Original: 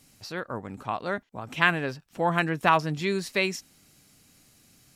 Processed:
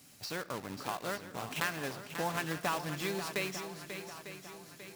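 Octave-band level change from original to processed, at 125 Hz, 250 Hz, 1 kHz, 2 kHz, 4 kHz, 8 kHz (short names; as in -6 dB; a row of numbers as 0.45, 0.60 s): -10.0, -9.0, -10.5, -10.5, -5.5, +0.5 dB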